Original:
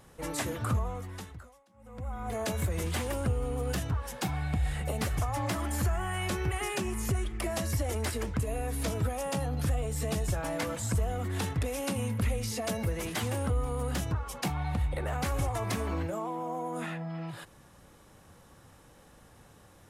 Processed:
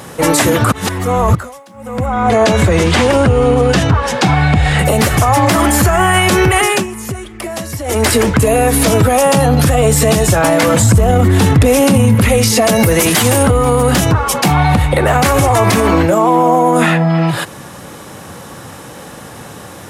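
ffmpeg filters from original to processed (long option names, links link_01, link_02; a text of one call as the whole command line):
ffmpeg -i in.wav -filter_complex "[0:a]asettb=1/sr,asplit=3[link_01][link_02][link_03];[link_01]atrim=end=2.064[link_04];[link_02]atrim=start=2.06:end=4.79,asetpts=PTS-STARTPTS,afade=type=in:duration=0.004:curve=qsin,afade=type=out:start_time=2.726:duration=0.004:curve=qsin,lowpass=5700[link_05];[link_03]atrim=start=4.786[link_06];[link_04][link_05]acrossfade=duration=0.004:curve1=hsin:curve2=qsin[link_07];[link_07][link_06]acrossfade=duration=0.004:curve1=qsin:curve2=hsin,asettb=1/sr,asplit=3[link_08][link_09][link_10];[link_08]atrim=end=10.744[link_11];[link_09]atrim=start=10.74:end=12.15,asetpts=PTS-STARTPTS,afade=type=in:duration=0.004:curve=qsin,afade=type=out:start_time=1.406:duration=0.004:curve=qsin,lowshelf=frequency=320:gain=9.5[link_12];[link_10]atrim=start=12.146[link_13];[link_11][link_12]acrossfade=duration=0.004:curve1=hsin:curve2=qsin[link_14];[link_14][link_13]acrossfade=duration=0.004:curve1=qsin:curve2=hsin,asettb=1/sr,asplit=3[link_15][link_16][link_17];[link_15]atrim=end=12.764[link_18];[link_16]atrim=start=12.76:end=13.43,asetpts=PTS-STARTPTS,afade=type=in:duration=0.004:curve=qsin,afade=type=out:start_time=0.666:duration=0.004:curve=qsin,highshelf=frequency=5300:gain=7.5[link_19];[link_17]atrim=start=13.426[link_20];[link_18][link_19]acrossfade=duration=0.004:curve1=hsin:curve2=qsin[link_21];[link_21][link_20]acrossfade=duration=0.004:curve1=qsin:curve2=hsin,asplit=5[link_22][link_23][link_24][link_25][link_26];[link_22]atrim=end=0.722[link_27];[link_23]atrim=start=0.718:end=1.352,asetpts=PTS-STARTPTS,areverse[link_28];[link_24]atrim=start=1.348:end=6.87,asetpts=PTS-STARTPTS,afade=type=out:start_time=5.242:duration=0.28:silence=0.16788[link_29];[link_25]atrim=start=6.87:end=7.83,asetpts=PTS-STARTPTS,volume=-15.5dB[link_30];[link_26]atrim=start=7.83,asetpts=PTS-STARTPTS,afade=type=in:duration=0.28:silence=0.16788[link_31];[link_27][link_28]acrossfade=duration=0.004:curve1=hsin:curve2=hsin[link_32];[link_29][link_30][link_31]concat=n=3:v=0:a=1[link_33];[link_32][link_33]acrossfade=duration=0.004:curve1=hsin:curve2=hsin,highpass=120,alimiter=level_in=27dB:limit=-1dB:release=50:level=0:latency=1,volume=-1dB" out.wav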